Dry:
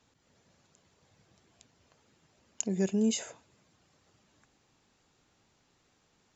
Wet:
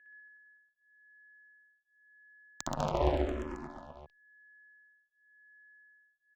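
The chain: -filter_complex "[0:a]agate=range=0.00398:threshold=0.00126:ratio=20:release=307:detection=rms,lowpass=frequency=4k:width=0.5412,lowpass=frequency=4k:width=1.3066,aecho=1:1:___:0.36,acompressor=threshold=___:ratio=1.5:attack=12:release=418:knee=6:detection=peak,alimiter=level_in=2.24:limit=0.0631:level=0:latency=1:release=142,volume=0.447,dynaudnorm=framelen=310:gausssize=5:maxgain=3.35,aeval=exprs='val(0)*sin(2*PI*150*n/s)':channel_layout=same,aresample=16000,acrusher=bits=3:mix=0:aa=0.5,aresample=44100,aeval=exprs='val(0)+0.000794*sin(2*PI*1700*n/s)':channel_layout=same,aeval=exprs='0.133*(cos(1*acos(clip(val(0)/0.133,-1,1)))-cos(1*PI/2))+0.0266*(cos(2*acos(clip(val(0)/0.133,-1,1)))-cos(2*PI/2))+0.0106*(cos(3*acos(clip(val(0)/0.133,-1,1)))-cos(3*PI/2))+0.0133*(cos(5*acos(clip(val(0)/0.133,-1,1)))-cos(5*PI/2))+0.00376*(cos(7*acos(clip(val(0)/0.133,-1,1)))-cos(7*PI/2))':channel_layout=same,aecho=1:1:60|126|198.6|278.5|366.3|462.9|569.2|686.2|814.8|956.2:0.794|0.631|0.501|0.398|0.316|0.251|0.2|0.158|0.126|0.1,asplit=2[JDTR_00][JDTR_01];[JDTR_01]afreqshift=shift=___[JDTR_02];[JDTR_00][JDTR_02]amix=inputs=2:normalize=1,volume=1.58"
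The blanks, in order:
1.4, 0.00398, -0.92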